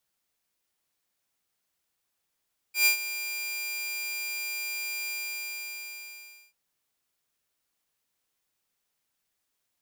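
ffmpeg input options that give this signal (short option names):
-f lavfi -i "aevalsrc='0.178*(2*mod(2400*t,1)-1)':d=3.79:s=44100,afade=t=in:d=0.119,afade=t=out:st=0.119:d=0.105:silence=0.2,afade=t=out:st=2.35:d=1.44"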